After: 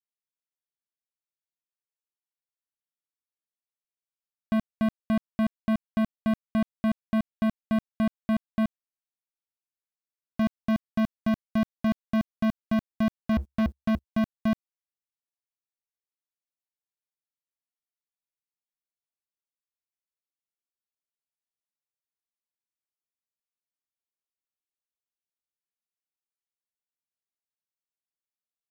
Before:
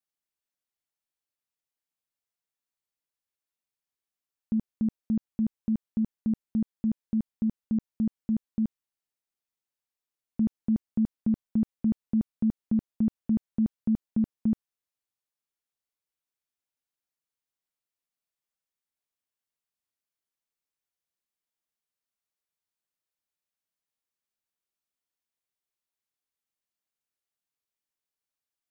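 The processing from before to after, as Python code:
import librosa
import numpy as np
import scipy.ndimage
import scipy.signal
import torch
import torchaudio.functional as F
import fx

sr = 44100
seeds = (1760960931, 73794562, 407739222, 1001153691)

y = fx.peak_eq(x, sr, hz=69.0, db=fx.line((13.32, 13.5), (14.03, 6.0)), octaves=0.37, at=(13.32, 14.03), fade=0.02)
y = fx.leveller(y, sr, passes=5)
y = y * librosa.db_to_amplitude(-2.5)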